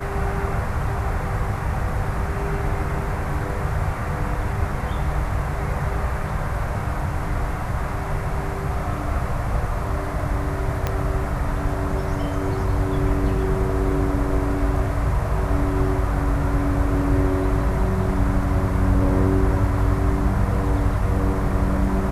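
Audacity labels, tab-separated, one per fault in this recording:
10.870000	10.870000	pop -9 dBFS

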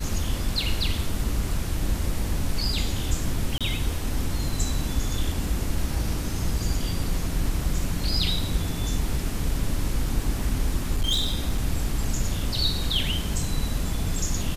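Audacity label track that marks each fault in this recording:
3.580000	3.610000	gap 26 ms
10.930000	11.660000	clipped -18.5 dBFS

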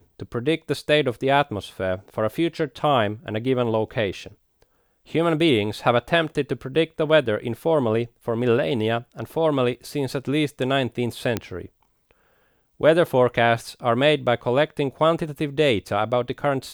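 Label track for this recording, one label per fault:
11.370000	11.370000	pop -9 dBFS

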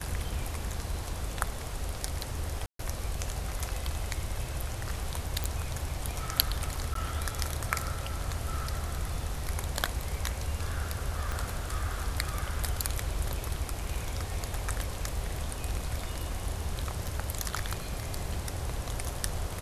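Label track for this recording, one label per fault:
2.660000	2.790000	gap 0.133 s
5.440000	5.440000	pop
6.940000	6.950000	gap 13 ms
11.320000	11.320000	pop
17.080000	17.080000	gap 3.8 ms

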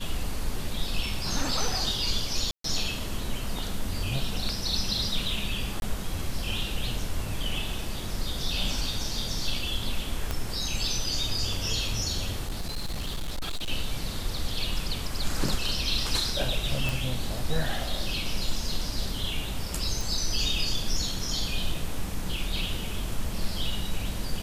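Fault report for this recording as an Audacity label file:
2.510000	2.640000	gap 0.133 s
5.800000	5.820000	gap 21 ms
10.310000	10.310000	pop -14 dBFS
12.430000	13.710000	clipped -27 dBFS
16.890000	16.890000	pop
20.010000	20.010000	pop

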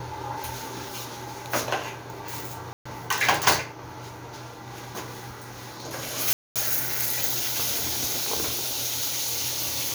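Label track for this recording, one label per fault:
2.730000	2.850000	gap 0.125 s
6.330000	6.560000	gap 0.227 s

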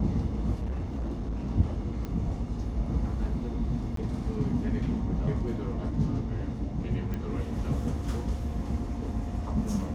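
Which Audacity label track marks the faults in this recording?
0.590000	1.500000	clipped -28.5 dBFS
2.050000	2.050000	pop -23 dBFS
3.960000	3.970000	gap 13 ms
5.910000	5.910000	gap 2.8 ms
7.140000	7.140000	pop -22 dBFS

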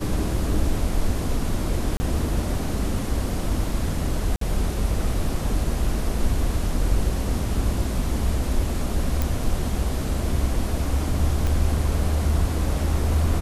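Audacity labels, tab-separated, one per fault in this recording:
1.970000	2.000000	gap 30 ms
4.360000	4.410000	gap 53 ms
9.220000	9.220000	pop
11.470000	11.470000	pop

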